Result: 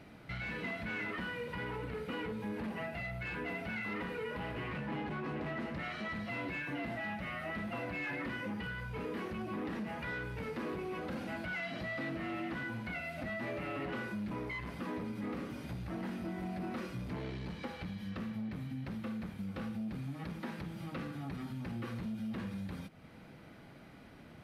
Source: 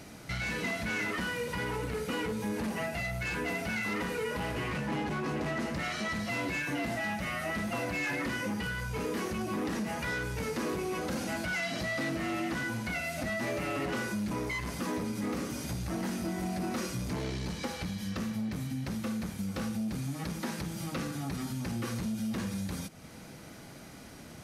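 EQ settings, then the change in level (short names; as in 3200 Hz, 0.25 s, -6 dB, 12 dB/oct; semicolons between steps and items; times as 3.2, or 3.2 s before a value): air absorption 490 m; pre-emphasis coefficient 0.8; bell 66 Hz -2.5 dB 0.38 oct; +9.0 dB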